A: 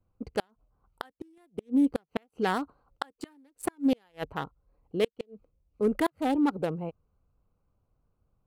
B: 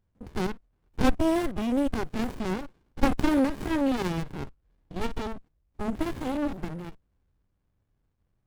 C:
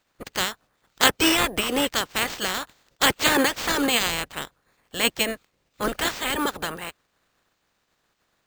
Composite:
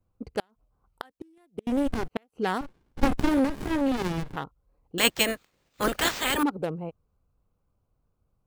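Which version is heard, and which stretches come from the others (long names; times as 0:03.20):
A
0:01.67–0:02.08: punch in from B
0:02.61–0:04.36: punch in from B
0:04.98–0:06.43: punch in from C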